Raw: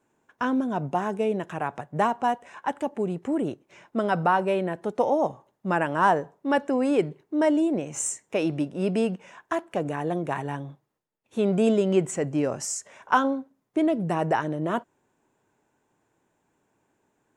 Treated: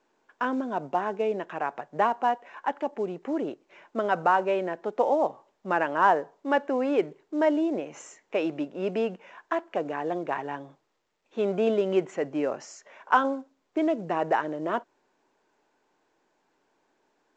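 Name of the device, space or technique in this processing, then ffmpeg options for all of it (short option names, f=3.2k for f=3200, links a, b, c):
telephone: -af "highpass=320,lowpass=3.2k" -ar 16000 -c:a pcm_mulaw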